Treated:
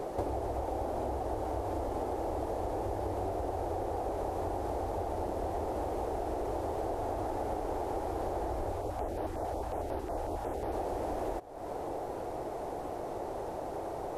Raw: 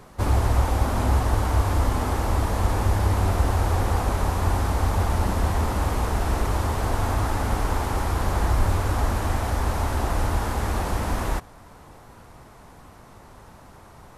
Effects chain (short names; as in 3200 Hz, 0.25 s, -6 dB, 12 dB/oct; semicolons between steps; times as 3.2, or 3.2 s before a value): band shelf 500 Hz +16 dB; compressor 10:1, threshold -32 dBFS, peak gain reduction 21 dB; 8.72–10.73 stepped notch 11 Hz 250–7300 Hz